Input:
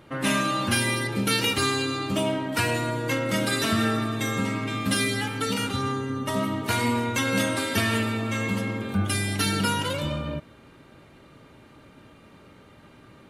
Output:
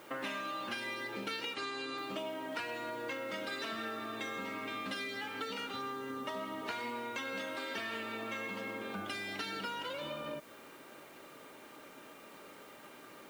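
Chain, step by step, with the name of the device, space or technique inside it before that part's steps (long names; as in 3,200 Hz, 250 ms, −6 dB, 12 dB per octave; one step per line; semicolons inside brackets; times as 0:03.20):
baby monitor (band-pass filter 370–4,200 Hz; downward compressor, threshold −39 dBFS, peak gain reduction 15.5 dB; white noise bed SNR 22 dB)
0:01.54–0:01.98: Butterworth low-pass 10,000 Hz 96 dB per octave
level +1 dB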